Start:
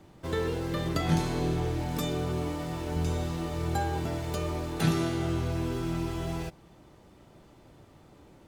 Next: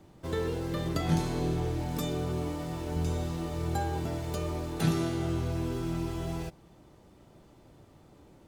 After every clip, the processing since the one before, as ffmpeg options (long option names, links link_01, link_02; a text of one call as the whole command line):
ffmpeg -i in.wav -af "equalizer=frequency=2000:width=0.56:gain=-3,volume=-1dB" out.wav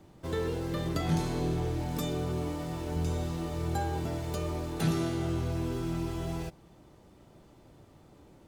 ffmpeg -i in.wav -af "asoftclip=type=tanh:threshold=-18dB" out.wav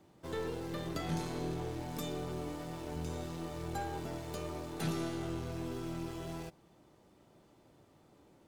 ffmpeg -i in.wav -af "lowshelf=frequency=96:gain=-12,aeval=exprs='0.106*(cos(1*acos(clip(val(0)/0.106,-1,1)))-cos(1*PI/2))+0.00531*(cos(8*acos(clip(val(0)/0.106,-1,1)))-cos(8*PI/2))':channel_layout=same,volume=-5dB" out.wav